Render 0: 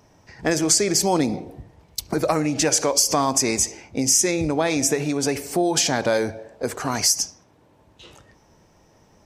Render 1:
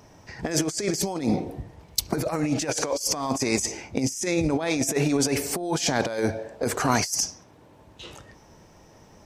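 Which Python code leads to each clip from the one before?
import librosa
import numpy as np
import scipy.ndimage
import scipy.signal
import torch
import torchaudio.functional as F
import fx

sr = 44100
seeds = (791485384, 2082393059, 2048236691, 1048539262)

y = fx.over_compress(x, sr, threshold_db=-24.0, ratio=-0.5)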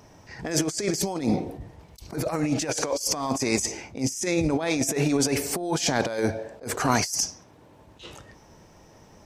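y = fx.attack_slew(x, sr, db_per_s=180.0)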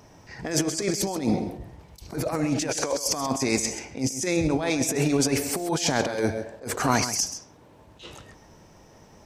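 y = x + 10.0 ** (-11.5 / 20.0) * np.pad(x, (int(132 * sr / 1000.0), 0))[:len(x)]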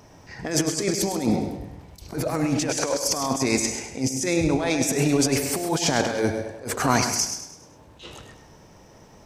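y = fx.echo_feedback(x, sr, ms=102, feedback_pct=44, wet_db=-10.0)
y = y * 10.0 ** (1.5 / 20.0)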